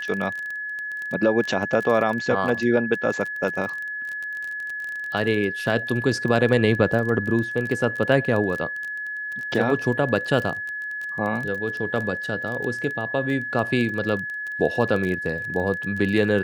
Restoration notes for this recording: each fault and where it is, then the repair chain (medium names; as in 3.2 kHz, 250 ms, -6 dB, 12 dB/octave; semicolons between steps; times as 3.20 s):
crackle 22 per s -27 dBFS
whine 1.7 kHz -28 dBFS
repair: de-click; band-stop 1.7 kHz, Q 30